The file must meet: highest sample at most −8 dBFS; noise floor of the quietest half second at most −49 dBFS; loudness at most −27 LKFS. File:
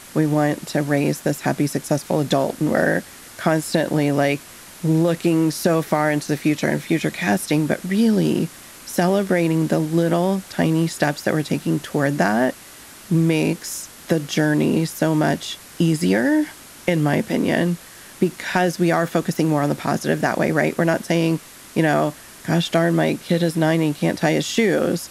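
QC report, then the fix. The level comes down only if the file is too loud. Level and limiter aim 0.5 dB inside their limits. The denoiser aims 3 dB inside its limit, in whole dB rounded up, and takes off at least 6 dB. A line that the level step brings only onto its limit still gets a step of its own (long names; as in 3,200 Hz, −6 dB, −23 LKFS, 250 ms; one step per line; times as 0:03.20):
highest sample −4.5 dBFS: out of spec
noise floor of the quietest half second −42 dBFS: out of spec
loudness −20.5 LKFS: out of spec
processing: broadband denoise 6 dB, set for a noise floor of −42 dBFS
level −7 dB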